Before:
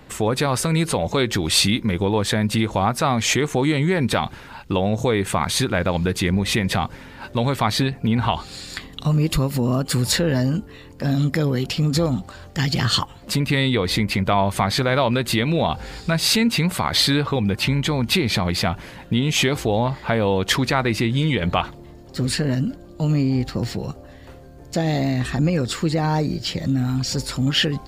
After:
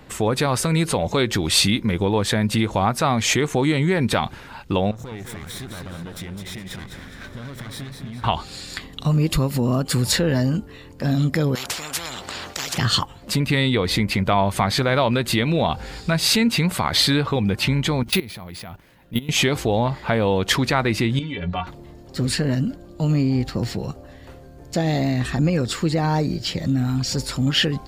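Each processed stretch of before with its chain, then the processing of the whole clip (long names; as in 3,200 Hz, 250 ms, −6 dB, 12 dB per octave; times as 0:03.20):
0:04.91–0:08.24: lower of the sound and its delayed copy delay 0.55 ms + downward compressor, threshold −32 dBFS + feedback echo with a swinging delay time 208 ms, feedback 45%, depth 62 cents, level −6.5 dB
0:11.55–0:12.78: high-pass filter 82 Hz + high-shelf EQ 7,200 Hz −10.5 dB + every bin compressed towards the loudest bin 10 to 1
0:18.03–0:19.29: output level in coarse steps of 18 dB + bad sample-rate conversion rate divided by 3×, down none, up hold
0:21.19–0:21.67: low-pass filter 4,900 Hz + stiff-string resonator 84 Hz, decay 0.22 s, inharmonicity 0.03
whole clip: no processing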